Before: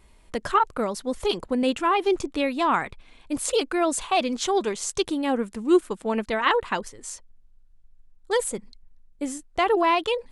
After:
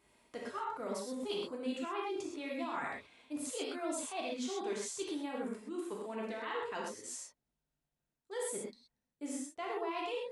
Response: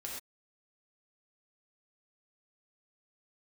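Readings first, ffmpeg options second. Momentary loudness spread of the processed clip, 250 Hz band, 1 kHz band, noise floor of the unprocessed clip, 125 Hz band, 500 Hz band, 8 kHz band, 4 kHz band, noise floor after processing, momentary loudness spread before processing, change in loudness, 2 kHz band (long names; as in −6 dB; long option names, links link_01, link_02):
7 LU, −14.0 dB, −17.0 dB, −55 dBFS, below −10 dB, −14.5 dB, −10.5 dB, −14.5 dB, below −85 dBFS, 12 LU, −15.0 dB, −15.0 dB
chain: -filter_complex "[0:a]highpass=170,areverse,acompressor=threshold=-30dB:ratio=6,areverse[link_01];[1:a]atrim=start_sample=2205[link_02];[link_01][link_02]afir=irnorm=-1:irlink=0,volume=-5dB"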